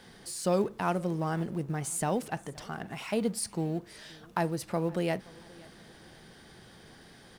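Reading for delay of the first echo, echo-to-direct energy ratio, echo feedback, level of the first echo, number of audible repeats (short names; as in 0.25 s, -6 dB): 0.524 s, -23.0 dB, 38%, -23.5 dB, 2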